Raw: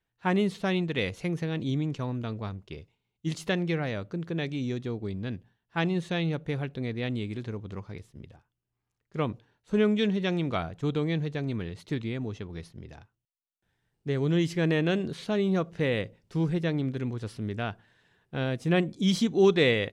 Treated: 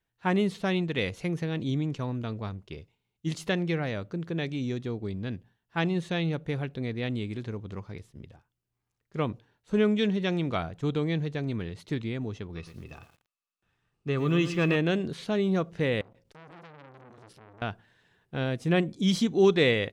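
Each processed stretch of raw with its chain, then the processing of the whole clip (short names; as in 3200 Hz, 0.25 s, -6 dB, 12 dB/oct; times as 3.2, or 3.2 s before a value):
12.55–14.76 LPF 8600 Hz + small resonant body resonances 1200/2600 Hz, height 15 dB, ringing for 30 ms + lo-fi delay 0.115 s, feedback 35%, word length 9-bit, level -11 dB
16.01–17.62 notches 60/120/180/240/300/360/420/480/540 Hz + compressor 2.5:1, threshold -45 dBFS + core saturation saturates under 1800 Hz
whole clip: dry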